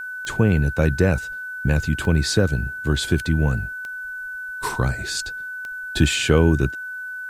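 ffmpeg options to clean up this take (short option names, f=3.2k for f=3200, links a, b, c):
-af "adeclick=t=4,bandreject=f=1.5k:w=30,agate=range=-21dB:threshold=-24dB"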